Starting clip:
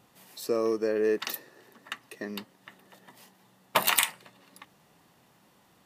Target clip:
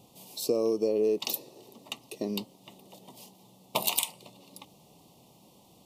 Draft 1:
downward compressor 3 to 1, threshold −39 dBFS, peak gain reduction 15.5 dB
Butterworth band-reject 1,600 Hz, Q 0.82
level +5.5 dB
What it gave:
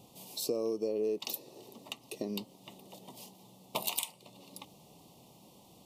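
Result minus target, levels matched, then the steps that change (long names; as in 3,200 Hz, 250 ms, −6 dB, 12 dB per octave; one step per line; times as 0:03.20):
downward compressor: peak gain reduction +6.5 dB
change: downward compressor 3 to 1, threshold −29.5 dBFS, peak gain reduction 9.5 dB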